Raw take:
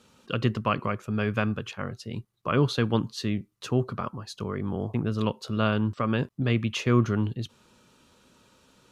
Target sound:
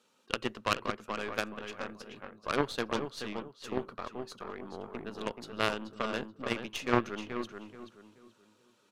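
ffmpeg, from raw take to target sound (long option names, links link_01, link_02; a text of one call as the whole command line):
ffmpeg -i in.wav -filter_complex "[0:a]highpass=310,asplit=2[link_01][link_02];[link_02]adelay=430,lowpass=frequency=2800:poles=1,volume=-4.5dB,asplit=2[link_03][link_04];[link_04]adelay=430,lowpass=frequency=2800:poles=1,volume=0.33,asplit=2[link_05][link_06];[link_06]adelay=430,lowpass=frequency=2800:poles=1,volume=0.33,asplit=2[link_07][link_08];[link_08]adelay=430,lowpass=frequency=2800:poles=1,volume=0.33[link_09];[link_01][link_03][link_05][link_07][link_09]amix=inputs=5:normalize=0,aeval=exprs='0.282*(cos(1*acos(clip(val(0)/0.282,-1,1)))-cos(1*PI/2))+0.112*(cos(2*acos(clip(val(0)/0.282,-1,1)))-cos(2*PI/2))+0.0708*(cos(3*acos(clip(val(0)/0.282,-1,1)))-cos(3*PI/2))+0.0158*(cos(8*acos(clip(val(0)/0.282,-1,1)))-cos(8*PI/2))':channel_layout=same,volume=3dB" out.wav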